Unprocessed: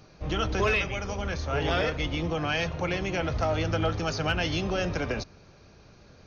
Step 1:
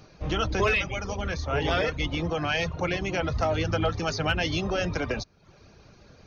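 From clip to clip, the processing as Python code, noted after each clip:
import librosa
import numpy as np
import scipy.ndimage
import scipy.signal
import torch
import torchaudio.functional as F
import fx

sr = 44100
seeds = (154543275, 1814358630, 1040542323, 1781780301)

y = fx.dereverb_blind(x, sr, rt60_s=0.56)
y = y * 10.0 ** (2.0 / 20.0)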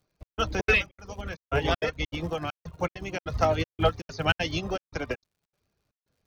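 y = fx.dmg_crackle(x, sr, seeds[0], per_s=130.0, level_db=-38.0)
y = fx.step_gate(y, sr, bpm=198, pattern='xxx..xxx.xxx.xx', floor_db=-60.0, edge_ms=4.5)
y = fx.upward_expand(y, sr, threshold_db=-42.0, expansion=2.5)
y = y * 10.0 ** (5.0 / 20.0)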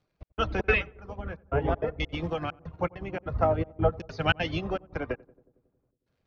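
y = fx.filter_lfo_lowpass(x, sr, shape='saw_down', hz=0.5, low_hz=830.0, high_hz=4300.0, q=0.72)
y = fx.echo_filtered(y, sr, ms=91, feedback_pct=72, hz=1000.0, wet_db=-23.0)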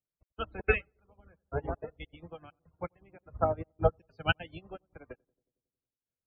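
y = fx.spec_topn(x, sr, count=64)
y = fx.upward_expand(y, sr, threshold_db=-34.0, expansion=2.5)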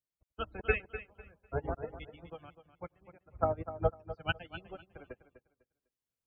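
y = fx.tremolo_random(x, sr, seeds[1], hz=3.5, depth_pct=55)
y = fx.echo_feedback(y, sr, ms=250, feedback_pct=22, wet_db=-12.5)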